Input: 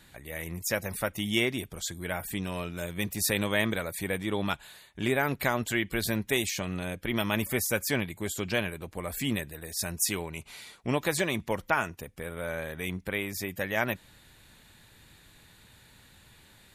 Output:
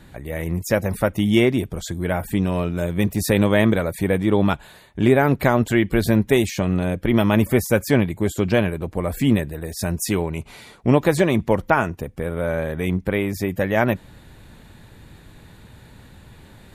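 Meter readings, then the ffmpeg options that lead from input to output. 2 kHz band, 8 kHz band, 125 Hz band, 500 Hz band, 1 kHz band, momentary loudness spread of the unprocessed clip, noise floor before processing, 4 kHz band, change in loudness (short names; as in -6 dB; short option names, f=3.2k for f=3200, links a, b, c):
+4.5 dB, +0.5 dB, +14.0 dB, +12.0 dB, +9.0 dB, 9 LU, -57 dBFS, +2.0 dB, +10.0 dB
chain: -af "tiltshelf=f=1.3k:g=7,areverse,acompressor=mode=upward:threshold=-48dB:ratio=2.5,areverse,volume=7dB"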